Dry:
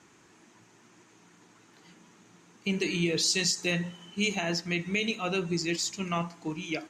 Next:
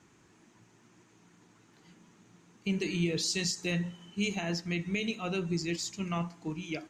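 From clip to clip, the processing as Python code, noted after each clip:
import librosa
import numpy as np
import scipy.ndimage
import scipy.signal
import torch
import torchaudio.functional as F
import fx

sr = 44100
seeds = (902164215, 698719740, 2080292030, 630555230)

y = fx.low_shelf(x, sr, hz=190.0, db=10.0)
y = F.gain(torch.from_numpy(y), -5.5).numpy()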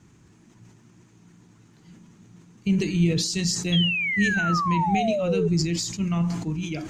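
y = fx.spec_paint(x, sr, seeds[0], shape='fall', start_s=3.72, length_s=1.76, low_hz=410.0, high_hz=3400.0, level_db=-26.0)
y = fx.bass_treble(y, sr, bass_db=13, treble_db=3)
y = fx.sustainer(y, sr, db_per_s=53.0)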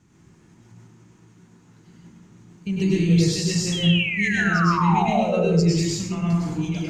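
y = fx.rev_plate(x, sr, seeds[1], rt60_s=0.93, hf_ratio=0.5, predelay_ms=90, drr_db=-5.5)
y = F.gain(torch.from_numpy(y), -4.5).numpy()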